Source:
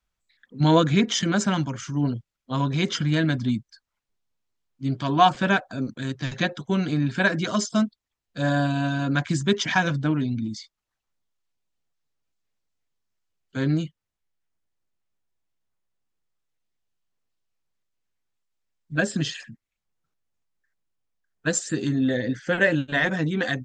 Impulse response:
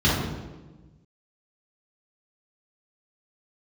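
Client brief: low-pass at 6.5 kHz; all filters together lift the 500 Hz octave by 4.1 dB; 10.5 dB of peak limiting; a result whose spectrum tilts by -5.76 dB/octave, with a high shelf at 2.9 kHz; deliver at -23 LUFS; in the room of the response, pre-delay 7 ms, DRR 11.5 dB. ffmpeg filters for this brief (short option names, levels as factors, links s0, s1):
-filter_complex "[0:a]lowpass=6500,equalizer=f=500:t=o:g=5,highshelf=f=2900:g=4.5,alimiter=limit=0.237:level=0:latency=1,asplit=2[s0][s1];[1:a]atrim=start_sample=2205,adelay=7[s2];[s1][s2]afir=irnorm=-1:irlink=0,volume=0.0355[s3];[s0][s3]amix=inputs=2:normalize=0,volume=0.944"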